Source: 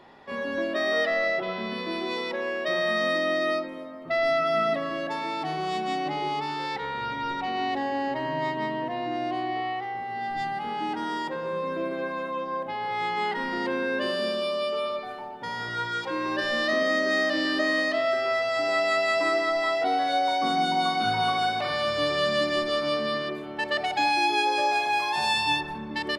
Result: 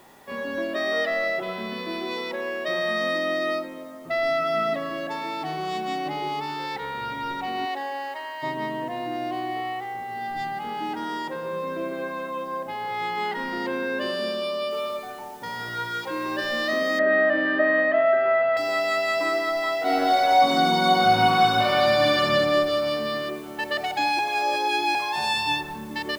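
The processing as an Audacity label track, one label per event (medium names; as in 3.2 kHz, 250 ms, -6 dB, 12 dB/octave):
7.650000	8.420000	high-pass 410 Hz -> 1.2 kHz
14.710000	14.710000	noise floor step -60 dB -53 dB
16.990000	18.570000	cabinet simulation 120–2500 Hz, peaks and dips at 170 Hz +8 dB, 630 Hz +7 dB, 1.6 kHz +10 dB
19.790000	22.200000	reverb throw, RT60 2.4 s, DRR -5 dB
24.190000	24.950000	reverse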